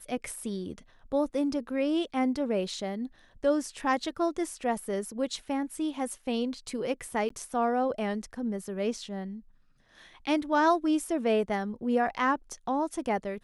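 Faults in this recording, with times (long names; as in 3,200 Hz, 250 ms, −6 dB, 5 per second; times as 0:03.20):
0:07.29–0:07.30: drop-out 14 ms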